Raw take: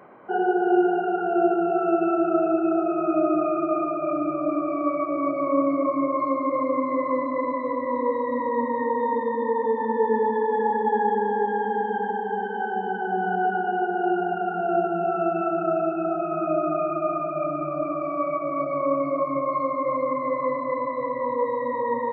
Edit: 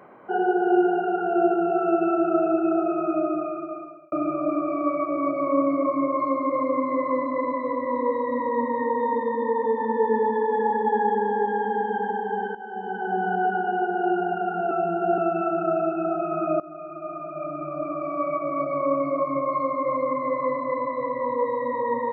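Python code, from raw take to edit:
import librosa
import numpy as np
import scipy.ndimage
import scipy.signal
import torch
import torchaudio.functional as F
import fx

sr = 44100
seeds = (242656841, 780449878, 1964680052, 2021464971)

y = fx.edit(x, sr, fx.fade_out_span(start_s=2.88, length_s=1.24),
    fx.fade_in_from(start_s=12.55, length_s=0.56, floor_db=-14.5),
    fx.reverse_span(start_s=14.71, length_s=0.47),
    fx.fade_in_from(start_s=16.6, length_s=1.75, floor_db=-18.0), tone=tone)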